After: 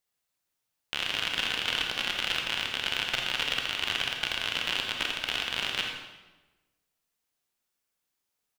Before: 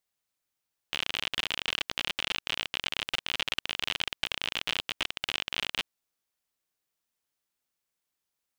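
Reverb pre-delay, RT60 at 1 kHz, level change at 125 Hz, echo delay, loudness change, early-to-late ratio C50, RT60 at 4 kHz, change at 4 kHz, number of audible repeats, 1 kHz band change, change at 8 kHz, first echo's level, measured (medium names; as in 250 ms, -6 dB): 25 ms, 1.1 s, +3.0 dB, 84 ms, +2.5 dB, 2.5 dB, 0.90 s, +2.5 dB, 1, +3.5 dB, +2.5 dB, -10.5 dB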